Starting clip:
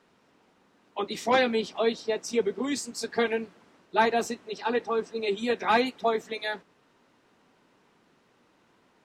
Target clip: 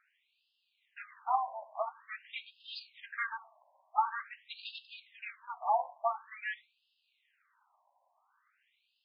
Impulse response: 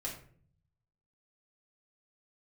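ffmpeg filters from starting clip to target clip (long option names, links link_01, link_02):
-filter_complex "[0:a]aeval=exprs='if(lt(val(0),0),0.251*val(0),val(0))':channel_layout=same,asplit=2[link_01][link_02];[1:a]atrim=start_sample=2205[link_03];[link_02][link_03]afir=irnorm=-1:irlink=0,volume=-8.5dB[link_04];[link_01][link_04]amix=inputs=2:normalize=0,afftfilt=real='re*between(b*sr/1024,760*pow(3700/760,0.5+0.5*sin(2*PI*0.47*pts/sr))/1.41,760*pow(3700/760,0.5+0.5*sin(2*PI*0.47*pts/sr))*1.41)':imag='im*between(b*sr/1024,760*pow(3700/760,0.5+0.5*sin(2*PI*0.47*pts/sr))/1.41,760*pow(3700/760,0.5+0.5*sin(2*PI*0.47*pts/sr))*1.41)':win_size=1024:overlap=0.75,volume=-1dB"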